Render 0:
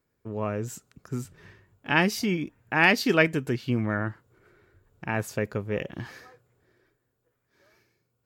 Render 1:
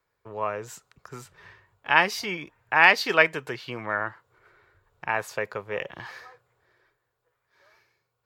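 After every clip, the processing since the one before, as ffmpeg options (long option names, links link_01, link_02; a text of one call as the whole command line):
ffmpeg -i in.wav -filter_complex "[0:a]equalizer=frequency=250:width_type=o:width=1:gain=-11,equalizer=frequency=500:width_type=o:width=1:gain=4,equalizer=frequency=1000:width_type=o:width=1:gain=10,equalizer=frequency=2000:width_type=o:width=1:gain=5,equalizer=frequency=4000:width_type=o:width=1:gain=6,acrossover=split=160|1500|2900[link_01][link_02][link_03][link_04];[link_01]acompressor=threshold=-47dB:ratio=6[link_05];[link_05][link_02][link_03][link_04]amix=inputs=4:normalize=0,volume=-4dB" out.wav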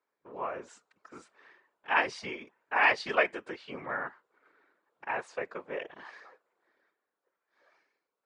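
ffmpeg -i in.wav -af "highshelf=frequency=3700:gain=-8.5,afftfilt=real='re*between(b*sr/4096,200,10000)':imag='im*between(b*sr/4096,200,10000)':win_size=4096:overlap=0.75,afftfilt=real='hypot(re,im)*cos(2*PI*random(0))':imag='hypot(re,im)*sin(2*PI*random(1))':win_size=512:overlap=0.75" out.wav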